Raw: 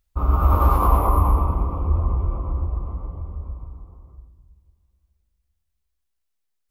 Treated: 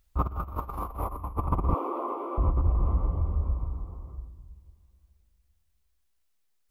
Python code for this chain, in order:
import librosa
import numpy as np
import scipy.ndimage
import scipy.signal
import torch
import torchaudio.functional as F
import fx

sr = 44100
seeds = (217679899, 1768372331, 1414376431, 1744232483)

y = fx.steep_highpass(x, sr, hz=290.0, slope=48, at=(1.74, 2.38))
y = fx.over_compress(y, sr, threshold_db=-24.0, ratio=-0.5)
y = y * librosa.db_to_amplitude(-1.5)